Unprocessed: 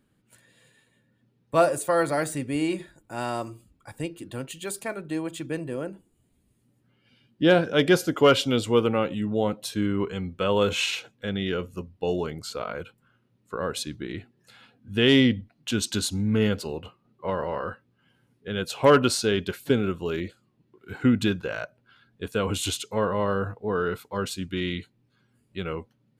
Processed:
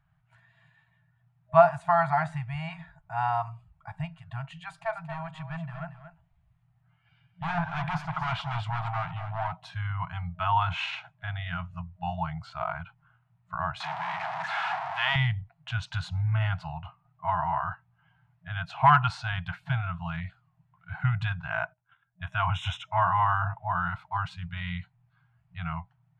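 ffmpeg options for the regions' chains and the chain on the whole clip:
ffmpeg -i in.wav -filter_complex "[0:a]asettb=1/sr,asplit=3[link_01][link_02][link_03];[link_01]atrim=end=4.674[link_04];[link_02]atrim=start=4.67:end=9.52,asetpts=PTS-STARTPTS,afade=type=in:duration=0.004:curve=qsin,afade=type=out:start_time=4.846:duration=0.004:curve=qsin,volume=25dB,asoftclip=hard,volume=-25dB,aecho=1:1:230:0.299,atrim=end_sample=213885[link_05];[link_03]atrim=start=9.516[link_06];[link_04][link_05]acrossfade=duration=0.004:curve1=hsin:curve2=qsin[link_07];[link_07][link_06]acrossfade=duration=0.004:curve1=qsin:curve2=hsin,asettb=1/sr,asplit=3[link_08][link_09][link_10];[link_08]atrim=end=13.804[link_11];[link_09]atrim=start=13.8:end=15.16,asetpts=PTS-STARTPTS,afade=type=in:duration=0.004:curve=qsin,afade=type=out:start_time=1.356:duration=0.004:curve=qsin,aeval=exprs='val(0)+0.5*0.075*sgn(val(0))':channel_layout=same,highpass=frequency=250:width=0.5412,highpass=frequency=250:width=1.3066,highshelf=frequency=11000:gain=-9[link_12];[link_10]atrim=start=15.156[link_13];[link_11][link_12]acrossfade=duration=0.004:curve1=hsin:curve2=qsin[link_14];[link_14][link_13]acrossfade=duration=0.004:curve1=qsin:curve2=hsin,asettb=1/sr,asplit=3[link_15][link_16][link_17];[link_15]atrim=end=21.504[link_18];[link_16]atrim=start=21.5:end=23.73,asetpts=PTS-STARTPTS,afade=type=in:duration=0.004:curve=qsin,afade=type=out:start_time=2.226:duration=0.004:curve=qsin,agate=range=-17dB:threshold=-56dB:ratio=16:release=100:detection=peak,asuperstop=centerf=4500:order=12:qfactor=3.5,equalizer=frequency=2600:width=0.44:gain=4[link_19];[link_17]atrim=start=23.726[link_20];[link_18][link_19]acrossfade=duration=0.004:curve1=hsin:curve2=qsin[link_21];[link_21][link_20]acrossfade=duration=0.004:curve1=qsin:curve2=hsin,lowpass=1700,afftfilt=real='re*(1-between(b*sr/4096,180,630))':imag='im*(1-between(b*sr/4096,180,630))':win_size=4096:overlap=0.75,adynamicequalizer=threshold=0.00355:dfrequency=890:dqfactor=4.1:tfrequency=890:tqfactor=4.1:attack=5:release=100:ratio=0.375:range=3.5:mode=boostabove:tftype=bell,volume=3dB" out.wav

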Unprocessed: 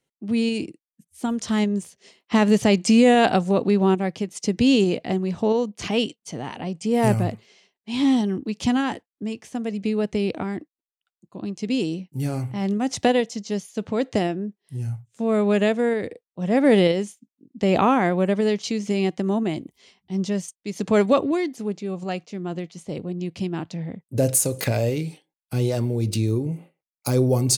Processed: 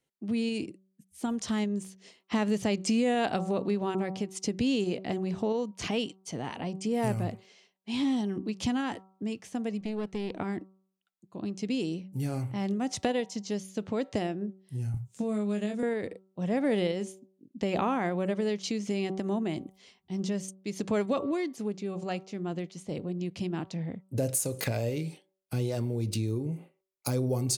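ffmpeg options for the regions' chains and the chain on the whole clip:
ffmpeg -i in.wav -filter_complex "[0:a]asettb=1/sr,asplit=3[link_01][link_02][link_03];[link_01]atrim=end=9.814[link_04];[link_02]atrim=start=9.81:end=10.4,asetpts=PTS-STARTPTS,afade=type=in:duration=0.004:curve=qsin,afade=type=out:start_time=0.586:duration=0.004:curve=qsin,aeval=exprs='if(lt(val(0),0),0.708*val(0),val(0))':channel_layout=same,highshelf=frequency=10000:gain=-5,aeval=exprs='(tanh(10*val(0)+0.55)-tanh(0.55))/10':channel_layout=same[link_05];[link_03]atrim=start=10.396[link_06];[link_04][link_05]acrossfade=duration=0.004:curve1=hsin:curve2=qsin[link_07];[link_07][link_06]acrossfade=duration=0.004:curve1=qsin:curve2=hsin,asettb=1/sr,asplit=3[link_08][link_09][link_10];[link_08]atrim=end=14.944[link_11];[link_09]atrim=start=14.94:end=15.83,asetpts=PTS-STARTPTS,afade=type=in:duration=0.004:curve=qsin,afade=type=out:start_time=0.886:duration=0.004:curve=qsin,bass=frequency=250:gain=9,treble=frequency=4000:gain=8,asplit=2[link_12][link_13];[link_13]adelay=24,volume=-5dB[link_14];[link_12][link_14]amix=inputs=2:normalize=0,atrim=end_sample=39249,acrossover=split=440|5500[link_15][link_16][link_17];[link_15]acompressor=threshold=-24dB:ratio=4[link_18];[link_16]acompressor=threshold=-33dB:ratio=4[link_19];[link_17]acompressor=threshold=-51dB:ratio=4[link_20];[link_18][link_19][link_20]amix=inputs=3:normalize=0[link_21];[link_10]atrim=start=15.826[link_22];[link_11][link_21]acrossfade=duration=0.004:curve1=hsin:curve2=qsin[link_23];[link_23][link_22]acrossfade=duration=0.004:curve1=qsin:curve2=hsin,bandreject=frequency=190.2:width_type=h:width=4,bandreject=frequency=380.4:width_type=h:width=4,bandreject=frequency=570.6:width_type=h:width=4,bandreject=frequency=760.8:width_type=h:width=4,bandreject=frequency=951:width_type=h:width=4,bandreject=frequency=1141.2:width_type=h:width=4,bandreject=frequency=1331.4:width_type=h:width=4,acompressor=threshold=-26dB:ratio=2,volume=-3.5dB" out.wav

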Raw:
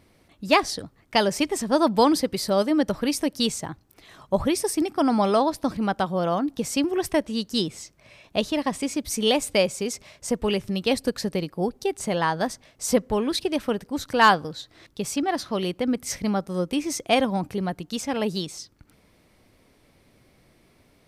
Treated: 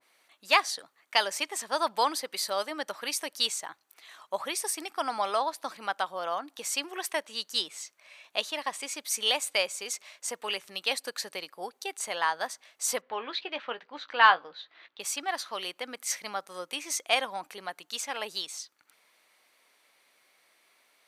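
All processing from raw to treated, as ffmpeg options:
ffmpeg -i in.wav -filter_complex "[0:a]asettb=1/sr,asplit=3[link_01][link_02][link_03];[link_01]atrim=end=13.014[link_04];[link_02]atrim=start=13.01:end=15,asetpts=PTS-STARTPTS,afade=type=in:duration=0.004:curve=qsin,afade=type=out:start_time=1.986:duration=0.004:curve=qsin,lowpass=frequency=3600:width=0.5412,lowpass=frequency=3600:width=1.3066,asplit=2[link_05][link_06];[link_06]adelay=17,volume=-11.5dB[link_07];[link_05][link_07]amix=inputs=2:normalize=0,atrim=end_sample=87759[link_08];[link_03]atrim=start=14.996[link_09];[link_04][link_08]acrossfade=duration=0.004:curve1=hsin:curve2=qsin[link_10];[link_10][link_09]acrossfade=duration=0.004:curve1=qsin:curve2=hsin,highpass=1000,bandreject=frequency=5200:width=12,adynamicequalizer=threshold=0.0141:dfrequency=1500:dqfactor=0.7:tfrequency=1500:tqfactor=0.7:attack=5:release=100:ratio=0.375:range=2.5:mode=cutabove:tftype=highshelf" out.wav

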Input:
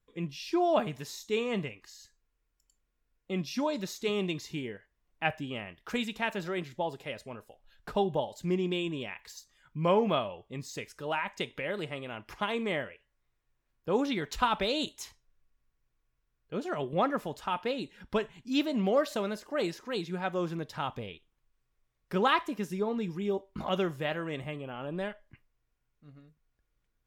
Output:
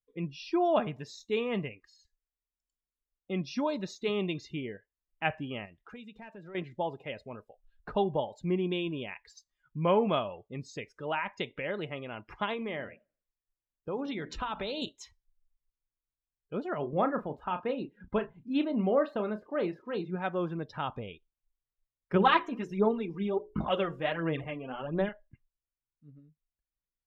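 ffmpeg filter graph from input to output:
ffmpeg -i in.wav -filter_complex "[0:a]asettb=1/sr,asplit=3[link_01][link_02][link_03];[link_01]atrim=end=5.654[link_04];[link_02]atrim=start=5.65:end=6.55,asetpts=PTS-STARTPTS,afade=type=in:duration=0.004:curve=qsin,afade=type=out:start_time=0.896:duration=0.004:curve=qsin,acompressor=threshold=-48dB:ratio=2.5:attack=3.2:release=140:knee=1:detection=peak,aeval=exprs='clip(val(0),-1,0.00708)':channel_layout=same[link_05];[link_03]atrim=start=6.546[link_06];[link_04][link_05]acrossfade=duration=0.004:curve1=hsin:curve2=qsin[link_07];[link_07][link_06]acrossfade=duration=0.004:curve1=qsin:curve2=hsin,asettb=1/sr,asplit=3[link_08][link_09][link_10];[link_08]atrim=end=12.534[link_11];[link_09]atrim=start=12.53:end=14.82,asetpts=PTS-STARTPTS,afade=type=in:duration=0.004:curve=qsin,afade=type=out:start_time=2.286:duration=0.004:curve=qsin,bandreject=frequency=60:width_type=h:width=6,bandreject=frequency=120:width_type=h:width=6,bandreject=frequency=180:width_type=h:width=6,bandreject=frequency=240:width_type=h:width=6,bandreject=frequency=300:width_type=h:width=6,acompressor=threshold=-33dB:ratio=2.5:attack=3.2:release=140:knee=1:detection=peak,asplit=2[link_12][link_13];[link_13]adelay=88,lowpass=frequency=2100:poles=1,volume=-18dB,asplit=2[link_14][link_15];[link_15]adelay=88,lowpass=frequency=2100:poles=1,volume=0.48,asplit=2[link_16][link_17];[link_17]adelay=88,lowpass=frequency=2100:poles=1,volume=0.48,asplit=2[link_18][link_19];[link_19]adelay=88,lowpass=frequency=2100:poles=1,volume=0.48[link_20];[link_12][link_14][link_16][link_18][link_20]amix=inputs=5:normalize=0,atrim=end_sample=100989[link_21];[link_10]atrim=start=14.816[link_22];[link_11][link_21]acrossfade=duration=0.004:curve1=hsin:curve2=qsin[link_23];[link_23][link_22]acrossfade=duration=0.004:curve1=qsin:curve2=hsin,asettb=1/sr,asplit=3[link_24][link_25][link_26];[link_24]atrim=end=16.784[link_27];[link_25]atrim=start=16.78:end=20.16,asetpts=PTS-STARTPTS,afade=type=in:duration=0.004:curve=qsin,afade=type=out:start_time=3.376:duration=0.004:curve=qsin,equalizer=frequency=6400:width_type=o:width=2.1:gain=-11,asplit=2[link_28][link_29];[link_29]adelay=33,volume=-9dB[link_30];[link_28][link_30]amix=inputs=2:normalize=0,atrim=end_sample=149058[link_31];[link_26]atrim=start=20.156[link_32];[link_27][link_31]acrossfade=duration=0.004:curve1=hsin:curve2=qsin[link_33];[link_33][link_32]acrossfade=duration=0.004:curve1=qsin:curve2=hsin,asettb=1/sr,asplit=3[link_34][link_35][link_36];[link_34]atrim=end=22.144[link_37];[link_35]atrim=start=22.14:end=25.09,asetpts=PTS-STARTPTS,afade=type=in:duration=0.004:curve=qsin,afade=type=out:start_time=2.946:duration=0.004:curve=qsin,aphaser=in_gain=1:out_gain=1:delay=4.4:decay=0.58:speed=1.4:type=sinusoidal,bandreject=frequency=60:width_type=h:width=6,bandreject=frequency=120:width_type=h:width=6,bandreject=frequency=180:width_type=h:width=6,bandreject=frequency=240:width_type=h:width=6,bandreject=frequency=300:width_type=h:width=6,bandreject=frequency=360:width_type=h:width=6,bandreject=frequency=420:width_type=h:width=6,bandreject=frequency=480:width_type=h:width=6,bandreject=frequency=540:width_type=h:width=6[link_38];[link_36]atrim=start=25.086[link_39];[link_37][link_38]acrossfade=duration=0.004:curve1=hsin:curve2=qsin[link_40];[link_40][link_39]acrossfade=duration=0.004:curve1=qsin:curve2=hsin,highshelf=frequency=7600:gain=-11.5,afftdn=noise_reduction=19:noise_floor=-50" out.wav

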